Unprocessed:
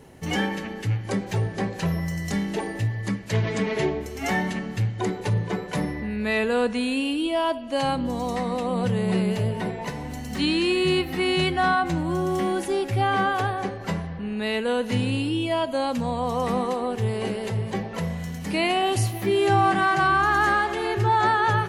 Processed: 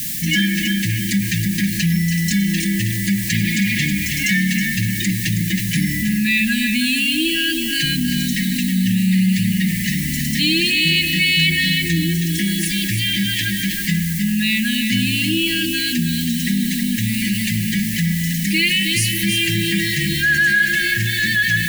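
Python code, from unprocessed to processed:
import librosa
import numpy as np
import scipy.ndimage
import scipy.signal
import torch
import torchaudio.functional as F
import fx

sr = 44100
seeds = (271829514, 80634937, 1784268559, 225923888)

y = fx.low_shelf(x, sr, hz=430.0, db=-5.5)
y = y + 0.73 * np.pad(y, (int(5.4 * sr / 1000.0), 0))[:len(y)]
y = fx.dmg_noise_colour(y, sr, seeds[0], colour='blue', level_db=-43.0)
y = fx.brickwall_bandstop(y, sr, low_hz=330.0, high_hz=1600.0)
y = fx.echo_feedback(y, sr, ms=320, feedback_pct=26, wet_db=-8.0)
y = fx.env_flatten(y, sr, amount_pct=50)
y = y * librosa.db_to_amplitude(6.0)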